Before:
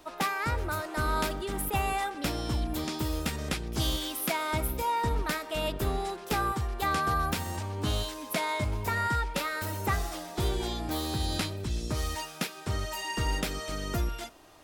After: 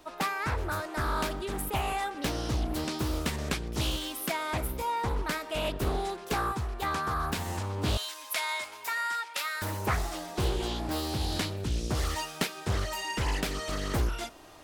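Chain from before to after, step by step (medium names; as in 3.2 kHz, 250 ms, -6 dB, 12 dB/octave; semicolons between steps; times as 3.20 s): 7.97–9.62 s: Bessel high-pass 1.4 kHz, order 2; gain riding within 4 dB 0.5 s; loudspeaker Doppler distortion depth 0.63 ms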